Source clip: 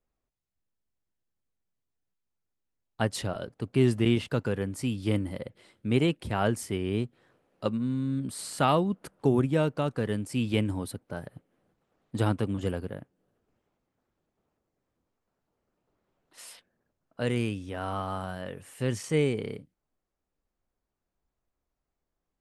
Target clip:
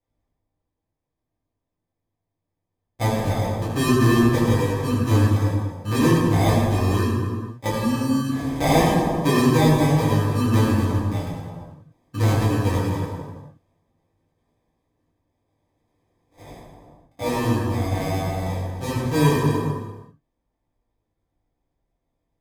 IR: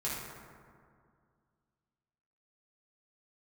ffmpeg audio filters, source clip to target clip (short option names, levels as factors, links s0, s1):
-filter_complex "[0:a]acrusher=samples=31:mix=1:aa=0.000001[s0];[1:a]atrim=start_sample=2205,afade=t=out:st=0.44:d=0.01,atrim=end_sample=19845,asetrate=31752,aresample=44100[s1];[s0][s1]afir=irnorm=-1:irlink=0"